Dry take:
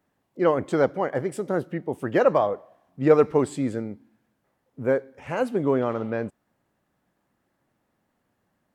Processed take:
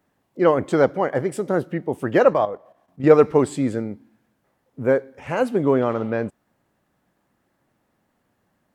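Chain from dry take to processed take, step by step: 2.3–3.04 level quantiser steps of 11 dB; gain +4 dB

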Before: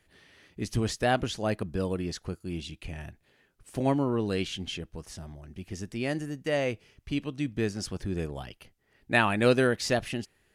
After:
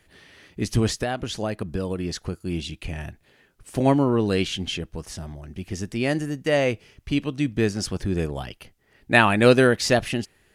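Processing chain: 0.87–2.44 compressor 10:1, threshold -30 dBFS, peak gain reduction 11 dB; gain +7 dB

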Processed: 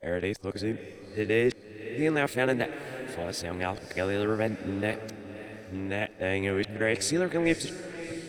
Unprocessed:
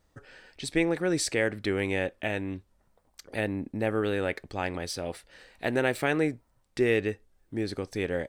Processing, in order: whole clip reversed; diffused feedback echo 0.587 s, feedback 46%, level -12 dB

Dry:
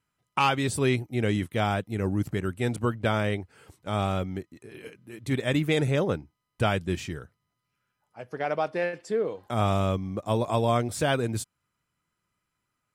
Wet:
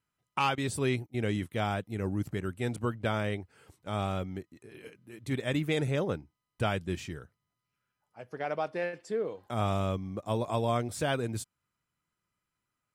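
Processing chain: 0.55–1.31 gate -33 dBFS, range -13 dB; gain -5 dB

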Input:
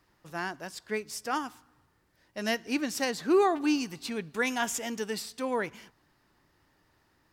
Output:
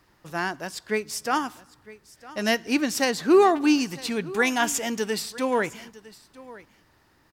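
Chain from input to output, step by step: echo 0.957 s -19.5 dB; gain +6.5 dB

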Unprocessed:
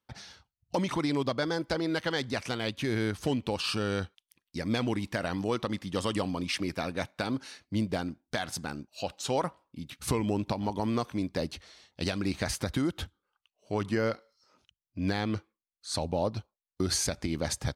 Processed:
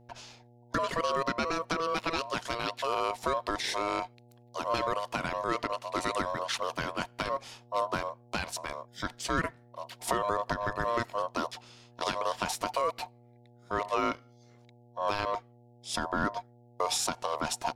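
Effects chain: ring modulator 820 Hz; buzz 120 Hz, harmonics 7, -60 dBFS -5 dB/oct; gain +2 dB

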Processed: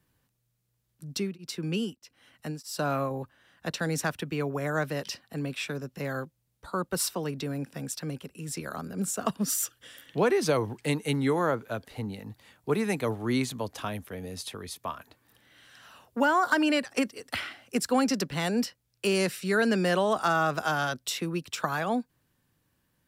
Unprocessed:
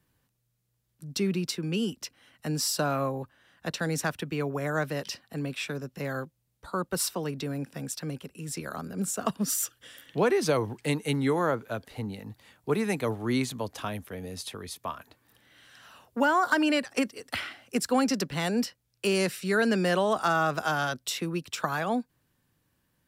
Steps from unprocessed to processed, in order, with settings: 1.07–3.11 beating tremolo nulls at 1.6 Hz

